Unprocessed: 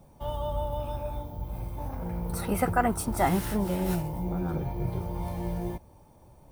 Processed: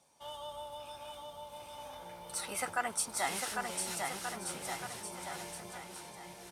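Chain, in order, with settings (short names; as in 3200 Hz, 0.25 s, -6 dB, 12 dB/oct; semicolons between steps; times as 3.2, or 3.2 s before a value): weighting filter ITU-R 468; on a send: bouncing-ball echo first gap 0.8 s, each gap 0.85×, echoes 5; on the sum: gain -8 dB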